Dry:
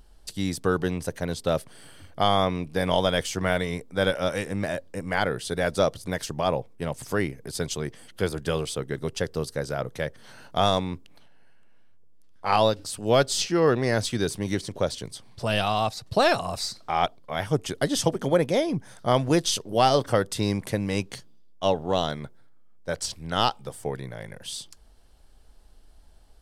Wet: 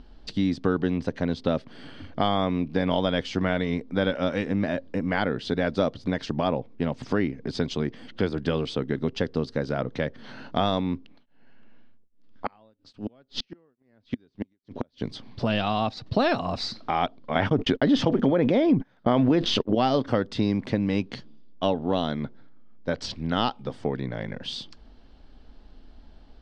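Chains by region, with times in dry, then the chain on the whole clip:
10.85–15.02 s: low-pass that closes with the level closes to 2.8 kHz, closed at -18 dBFS + inverted gate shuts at -18 dBFS, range -41 dB + tremolo of two beating tones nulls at 1.2 Hz
17.35–19.75 s: gate -36 dBFS, range -53 dB + tone controls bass -3 dB, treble -10 dB + level flattener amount 70%
whole clip: low-pass 4.5 kHz 24 dB/octave; peaking EQ 250 Hz +11 dB 0.7 oct; compression 2:1, threshold -30 dBFS; trim +4.5 dB

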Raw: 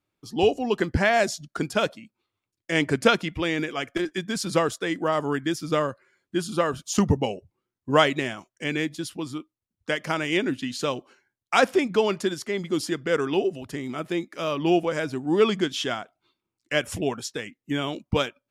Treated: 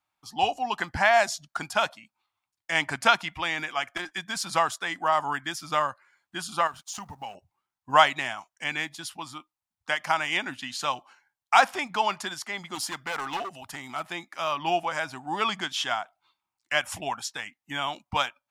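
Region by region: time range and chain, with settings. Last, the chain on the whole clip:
6.67–7.35 s: companding laws mixed up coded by A + compression 2.5:1, threshold -35 dBFS
12.75–14.03 s: treble shelf 8.3 kHz +6.5 dB + hard clipper -23 dBFS
whole clip: de-esser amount 45%; resonant low shelf 600 Hz -10.5 dB, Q 3

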